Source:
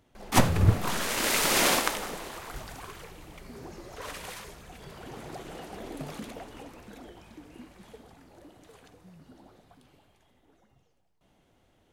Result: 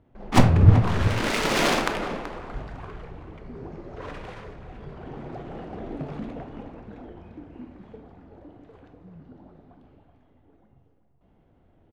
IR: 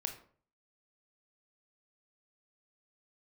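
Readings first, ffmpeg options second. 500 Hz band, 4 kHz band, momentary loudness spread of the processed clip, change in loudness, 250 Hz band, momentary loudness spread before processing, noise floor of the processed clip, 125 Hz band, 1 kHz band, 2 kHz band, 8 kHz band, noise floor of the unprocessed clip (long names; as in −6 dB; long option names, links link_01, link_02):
+4.5 dB, −1.0 dB, 24 LU, +4.5 dB, +6.5 dB, 24 LU, −62 dBFS, +8.5 dB, +2.5 dB, +1.0 dB, −7.5 dB, −68 dBFS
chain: -filter_complex "[0:a]asplit=2[link_01][link_02];[link_02]adelay=379,volume=-10dB,highshelf=frequency=4000:gain=-8.53[link_03];[link_01][link_03]amix=inputs=2:normalize=0,adynamicsmooth=sensitivity=3:basefreq=2000,asplit=2[link_04][link_05];[1:a]atrim=start_sample=2205,lowshelf=frequency=470:gain=8[link_06];[link_05][link_06]afir=irnorm=-1:irlink=0,volume=5dB[link_07];[link_04][link_07]amix=inputs=2:normalize=0,volume=-7dB"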